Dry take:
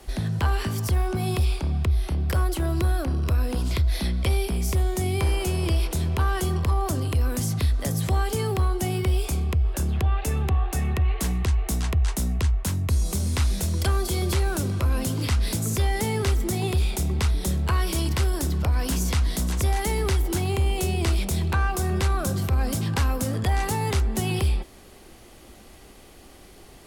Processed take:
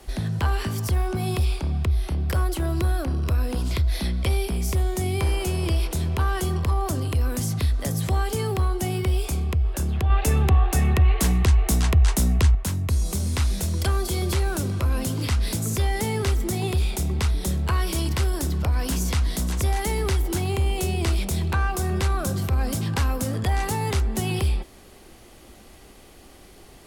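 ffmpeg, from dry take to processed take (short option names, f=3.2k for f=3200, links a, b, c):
-filter_complex "[0:a]asplit=3[a][b][c];[a]atrim=end=10.102[d];[b]atrim=start=10.098:end=12.552,asetpts=PTS-STARTPTS,volume=5dB[e];[c]atrim=start=12.548[f];[d][e]acrossfade=d=0.004:c1=hsin:c2=hsin[g];[g][f]acrossfade=d=0.004:c1=hsin:c2=hsin"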